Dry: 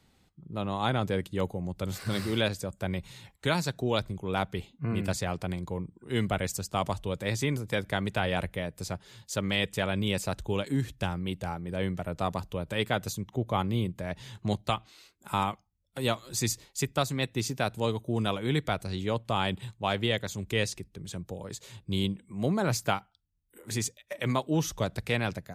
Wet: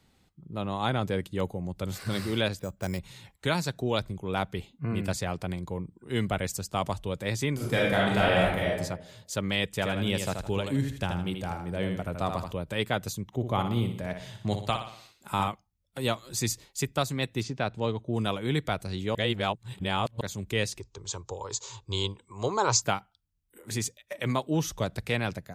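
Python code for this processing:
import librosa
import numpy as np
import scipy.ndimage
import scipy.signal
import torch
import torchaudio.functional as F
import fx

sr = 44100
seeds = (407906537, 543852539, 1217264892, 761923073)

y = fx.resample_bad(x, sr, factor=6, down='filtered', up='hold', at=(2.59, 2.99))
y = fx.reverb_throw(y, sr, start_s=7.54, length_s=1.22, rt60_s=0.85, drr_db=-5.5)
y = fx.echo_feedback(y, sr, ms=80, feedback_pct=32, wet_db=-6.0, at=(9.81, 12.51), fade=0.02)
y = fx.echo_feedback(y, sr, ms=60, feedback_pct=51, wet_db=-8, at=(13.28, 15.48))
y = fx.air_absorb(y, sr, metres=120.0, at=(17.42, 18.12), fade=0.02)
y = fx.curve_eq(y, sr, hz=(120.0, 170.0, 280.0, 430.0, 660.0, 960.0, 1800.0, 3100.0, 7100.0, 11000.0), db=(0, -15, -7, 5, -2, 15, -3, 3, 13, -28), at=(20.8, 22.82))
y = fx.edit(y, sr, fx.reverse_span(start_s=19.15, length_s=1.06), tone=tone)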